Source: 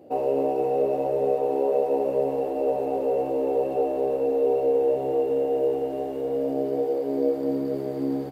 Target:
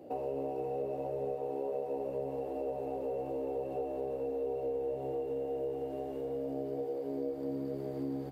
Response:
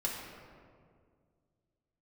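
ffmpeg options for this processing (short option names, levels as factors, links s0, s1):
-filter_complex "[0:a]acrossover=split=130[s0][s1];[s1]acompressor=threshold=0.0126:ratio=2.5[s2];[s0][s2]amix=inputs=2:normalize=0,volume=0.841"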